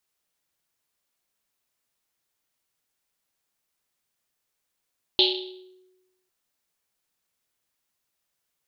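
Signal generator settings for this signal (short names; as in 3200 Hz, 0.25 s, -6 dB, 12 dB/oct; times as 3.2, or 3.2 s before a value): Risset drum, pitch 370 Hz, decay 1.15 s, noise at 3600 Hz, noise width 1400 Hz, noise 60%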